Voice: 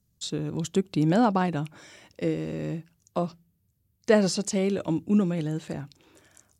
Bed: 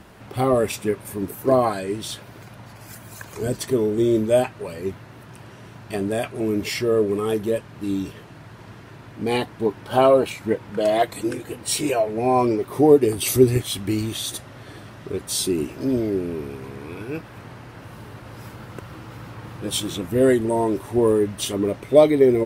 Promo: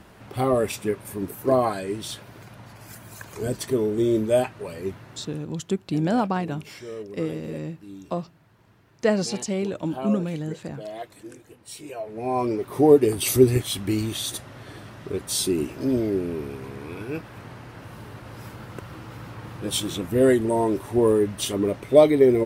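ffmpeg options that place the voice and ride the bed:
ffmpeg -i stem1.wav -i stem2.wav -filter_complex "[0:a]adelay=4950,volume=-1dB[link_01];[1:a]volume=13dB,afade=type=out:start_time=5.26:duration=0.21:silence=0.199526,afade=type=in:start_time=11.88:duration=1.05:silence=0.16788[link_02];[link_01][link_02]amix=inputs=2:normalize=0" out.wav

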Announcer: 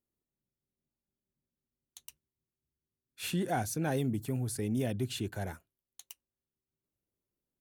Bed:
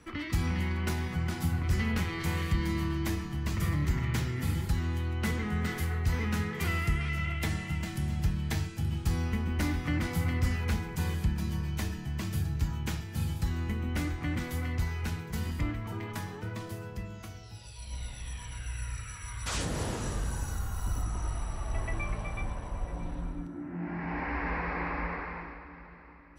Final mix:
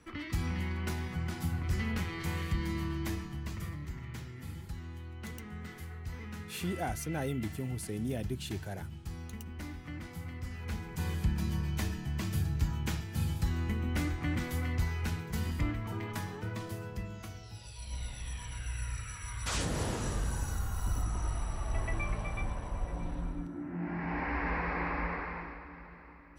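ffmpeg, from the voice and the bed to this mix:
ffmpeg -i stem1.wav -i stem2.wav -filter_complex "[0:a]adelay=3300,volume=-3.5dB[link_01];[1:a]volume=8dB,afade=type=out:start_time=3.2:duration=0.58:silence=0.375837,afade=type=in:start_time=10.5:duration=0.88:silence=0.251189[link_02];[link_01][link_02]amix=inputs=2:normalize=0" out.wav

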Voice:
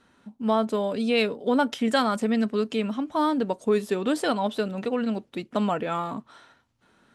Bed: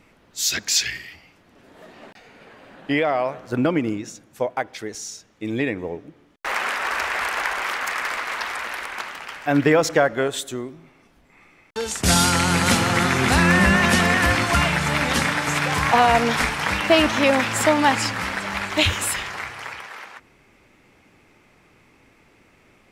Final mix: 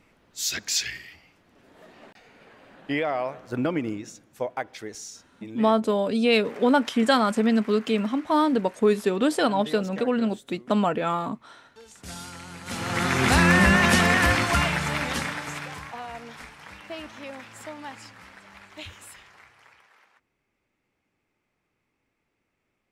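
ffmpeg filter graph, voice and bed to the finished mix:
ffmpeg -i stem1.wav -i stem2.wav -filter_complex "[0:a]adelay=5150,volume=2.5dB[link_01];[1:a]volume=15dB,afade=type=out:start_time=4.99:duration=0.76:silence=0.149624,afade=type=in:start_time=12.65:duration=0.62:silence=0.0944061,afade=type=out:start_time=14.21:duration=1.71:silence=0.1[link_02];[link_01][link_02]amix=inputs=2:normalize=0" out.wav

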